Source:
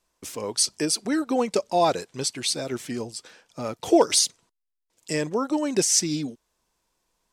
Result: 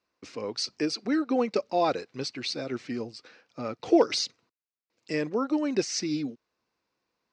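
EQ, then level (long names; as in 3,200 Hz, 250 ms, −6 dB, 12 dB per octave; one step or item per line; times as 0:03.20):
loudspeaker in its box 130–4,500 Hz, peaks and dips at 170 Hz −7 dB, 390 Hz −3 dB, 640 Hz −5 dB, 930 Hz −7 dB, 1,700 Hz −3 dB, 3,300 Hz −10 dB
0.0 dB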